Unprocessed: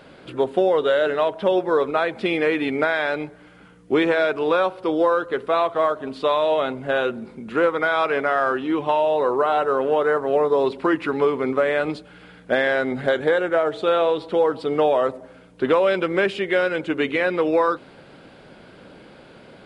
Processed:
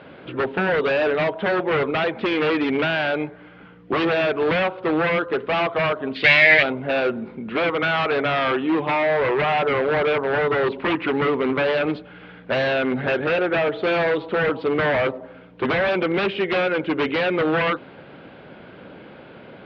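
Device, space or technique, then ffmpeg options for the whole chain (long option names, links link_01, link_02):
synthesiser wavefolder: -filter_complex "[0:a]aeval=exprs='0.119*(abs(mod(val(0)/0.119+3,4)-2)-1)':channel_layout=same,highpass=64,lowpass=frequency=3300:width=0.5412,lowpass=frequency=3300:width=1.3066,asplit=3[link_01][link_02][link_03];[link_01]afade=type=out:start_time=6.14:duration=0.02[link_04];[link_02]highshelf=frequency=1500:width_type=q:width=3:gain=9.5,afade=type=in:start_time=6.14:duration=0.02,afade=type=out:start_time=6.62:duration=0.02[link_05];[link_03]afade=type=in:start_time=6.62:duration=0.02[link_06];[link_04][link_05][link_06]amix=inputs=3:normalize=0,volume=3.5dB"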